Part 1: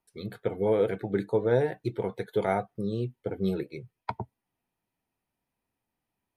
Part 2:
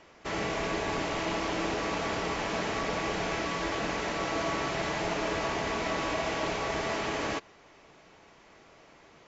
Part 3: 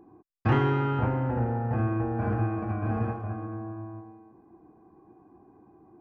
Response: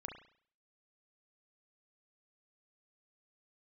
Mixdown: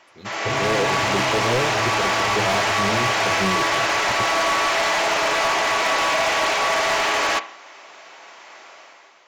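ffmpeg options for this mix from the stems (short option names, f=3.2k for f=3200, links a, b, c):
-filter_complex "[0:a]volume=-5dB[a];[1:a]highpass=680,volume=2.5dB,asplit=2[b][c];[c]volume=-4.5dB[d];[2:a]volume=-14.5dB[e];[3:a]atrim=start_sample=2205[f];[d][f]afir=irnorm=-1:irlink=0[g];[a][b][e][g]amix=inputs=4:normalize=0,bandreject=f=460:w=12,dynaudnorm=f=150:g=7:m=10.5dB,asoftclip=type=hard:threshold=-16dB"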